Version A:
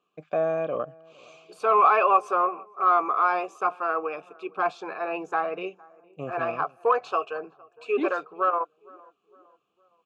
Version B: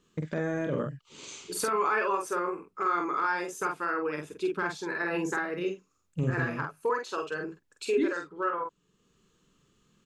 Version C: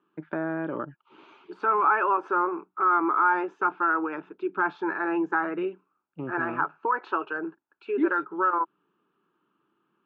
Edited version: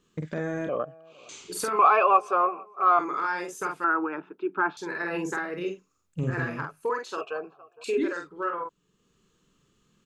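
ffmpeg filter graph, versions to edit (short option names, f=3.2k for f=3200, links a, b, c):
-filter_complex "[0:a]asplit=3[a][b][c];[1:a]asplit=5[d][e][f][g][h];[d]atrim=end=0.692[i];[a]atrim=start=0.688:end=1.292[j];[e]atrim=start=1.288:end=1.792[k];[b]atrim=start=1.788:end=2.992[l];[f]atrim=start=2.988:end=3.842[m];[2:a]atrim=start=3.838:end=4.772[n];[g]atrim=start=4.768:end=7.212[o];[c]atrim=start=7.208:end=7.842[p];[h]atrim=start=7.838[q];[i][j]acrossfade=d=0.004:c1=hsin:c2=hsin[r];[r][k]acrossfade=d=0.004:c1=hsin:c2=hsin[s];[s][l]acrossfade=d=0.004:c1=hsin:c2=hsin[t];[t][m]acrossfade=d=0.004:c1=hsin:c2=hsin[u];[u][n]acrossfade=d=0.004:c1=hsin:c2=hsin[v];[v][o]acrossfade=d=0.004:c1=hsin:c2=hsin[w];[w][p]acrossfade=d=0.004:c1=hsin:c2=hsin[x];[x][q]acrossfade=d=0.004:c1=hsin:c2=hsin"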